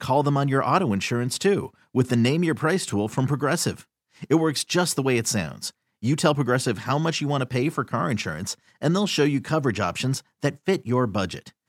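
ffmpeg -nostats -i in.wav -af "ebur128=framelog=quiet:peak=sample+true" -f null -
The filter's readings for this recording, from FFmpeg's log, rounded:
Integrated loudness:
  I:         -23.9 LUFS
  Threshold: -34.0 LUFS
Loudness range:
  LRA:         1.7 LU
  Threshold: -44.2 LUFS
  LRA low:   -24.9 LUFS
  LRA high:  -23.2 LUFS
Sample peak:
  Peak:       -5.6 dBFS
True peak:
  Peak:       -5.6 dBFS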